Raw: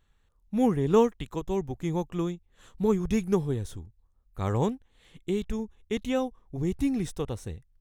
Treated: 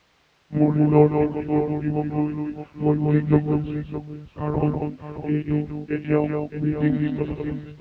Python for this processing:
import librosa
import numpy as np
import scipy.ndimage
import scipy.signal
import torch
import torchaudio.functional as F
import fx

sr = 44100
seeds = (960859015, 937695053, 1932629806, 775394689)

p1 = fx.partial_stretch(x, sr, pct=89)
p2 = fx.lpc_monotone(p1, sr, seeds[0], pitch_hz=150.0, order=16)
p3 = fx.echo_multitap(p2, sr, ms=(152, 193, 616), db=(-18.0, -4.5, -10.0))
p4 = fx.quant_dither(p3, sr, seeds[1], bits=8, dither='triangular')
p5 = p3 + (p4 * 10.0 ** (-10.5 / 20.0))
p6 = scipy.signal.sosfilt(scipy.signal.butter(2, 58.0, 'highpass', fs=sr, output='sos'), p5)
p7 = fx.air_absorb(p6, sr, metres=210.0)
y = p7 * 10.0 ** (5.0 / 20.0)